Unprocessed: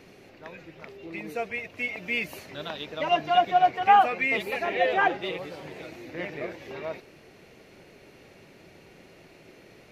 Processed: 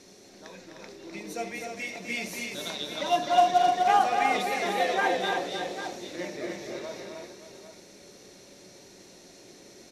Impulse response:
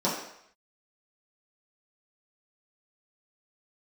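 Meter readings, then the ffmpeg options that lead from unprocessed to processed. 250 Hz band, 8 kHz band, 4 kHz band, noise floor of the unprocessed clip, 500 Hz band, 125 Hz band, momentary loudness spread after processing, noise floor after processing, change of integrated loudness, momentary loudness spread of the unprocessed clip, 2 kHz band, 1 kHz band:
+1.0 dB, can't be measured, +2.0 dB, −53 dBFS, 0.0 dB, −2.5 dB, 23 LU, −52 dBFS, −1.5 dB, 22 LU, −3.0 dB, −1.0 dB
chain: -filter_complex "[0:a]asplit=2[link_01][link_02];[1:a]atrim=start_sample=2205,atrim=end_sample=3969[link_03];[link_02][link_03]afir=irnorm=-1:irlink=0,volume=-16.5dB[link_04];[link_01][link_04]amix=inputs=2:normalize=0,aexciter=amount=7.7:drive=4.4:freq=4000,aecho=1:1:87|254|305|567|797:0.133|0.473|0.531|0.237|0.266,acrusher=bits=5:mode=log:mix=0:aa=0.000001,lowpass=7100,volume=-6dB"

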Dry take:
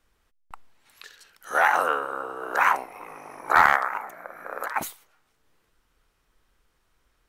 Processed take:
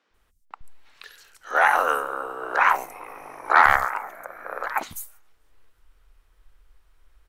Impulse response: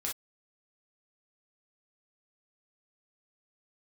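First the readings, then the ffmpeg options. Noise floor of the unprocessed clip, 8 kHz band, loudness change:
−70 dBFS, 0.0 dB, +2.0 dB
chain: -filter_complex "[0:a]asubboost=boost=5:cutoff=65,acrossover=split=210|6000[link_01][link_02][link_03];[link_01]adelay=100[link_04];[link_03]adelay=140[link_05];[link_04][link_02][link_05]amix=inputs=3:normalize=0,volume=2dB"

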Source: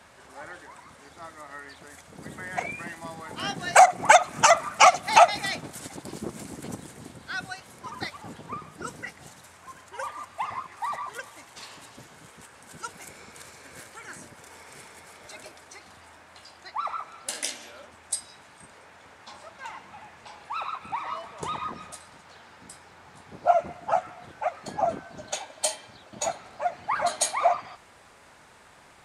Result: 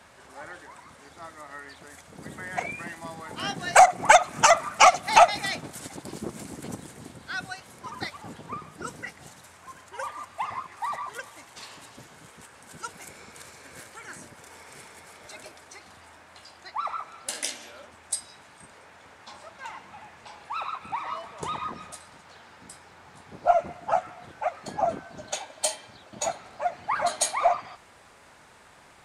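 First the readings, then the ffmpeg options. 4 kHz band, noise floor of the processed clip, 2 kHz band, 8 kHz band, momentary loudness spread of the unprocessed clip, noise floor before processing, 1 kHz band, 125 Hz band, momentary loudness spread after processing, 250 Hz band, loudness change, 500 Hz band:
0.0 dB, −53 dBFS, 0.0 dB, 0.0 dB, 26 LU, −53 dBFS, 0.0 dB, 0.0 dB, 26 LU, 0.0 dB, 0.0 dB, 0.0 dB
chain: -af "aeval=exprs='0.841*(cos(1*acos(clip(val(0)/0.841,-1,1)))-cos(1*PI/2))+0.0188*(cos(4*acos(clip(val(0)/0.841,-1,1)))-cos(4*PI/2))':channel_layout=same"

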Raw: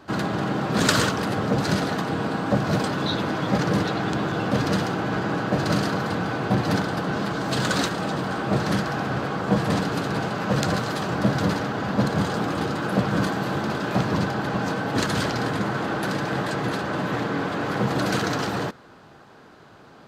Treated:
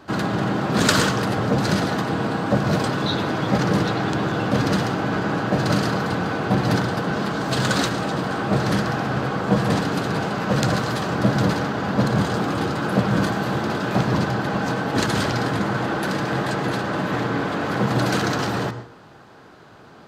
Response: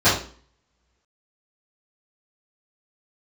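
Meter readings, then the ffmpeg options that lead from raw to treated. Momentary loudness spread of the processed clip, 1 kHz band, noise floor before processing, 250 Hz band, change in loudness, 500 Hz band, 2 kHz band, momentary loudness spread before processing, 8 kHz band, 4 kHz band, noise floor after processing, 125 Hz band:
4 LU, +2.5 dB, −49 dBFS, +2.5 dB, +2.5 dB, +2.5 dB, +2.5 dB, 4 LU, +2.0 dB, +2.0 dB, −46 dBFS, +3.0 dB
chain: -filter_complex "[0:a]asplit=2[link_01][link_02];[1:a]atrim=start_sample=2205,asetrate=52920,aresample=44100,adelay=93[link_03];[link_02][link_03]afir=irnorm=-1:irlink=0,volume=-32.5dB[link_04];[link_01][link_04]amix=inputs=2:normalize=0,volume=2dB"

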